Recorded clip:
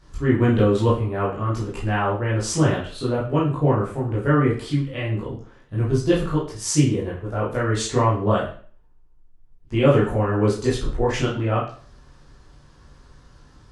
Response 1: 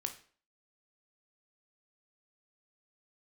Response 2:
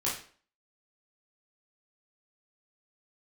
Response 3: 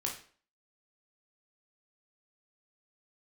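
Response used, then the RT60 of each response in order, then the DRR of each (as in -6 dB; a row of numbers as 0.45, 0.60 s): 2; 0.45, 0.45, 0.45 s; 5.5, -7.0, -1.0 dB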